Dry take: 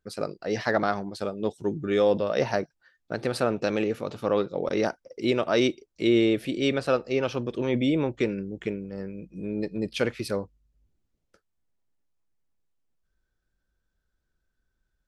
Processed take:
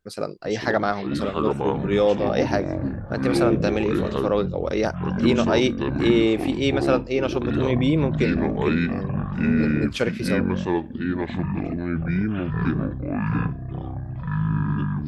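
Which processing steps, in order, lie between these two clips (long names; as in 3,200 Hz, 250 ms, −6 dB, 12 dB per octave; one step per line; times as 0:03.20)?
delay with pitch and tempo change per echo 359 ms, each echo −7 semitones, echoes 3
level +2.5 dB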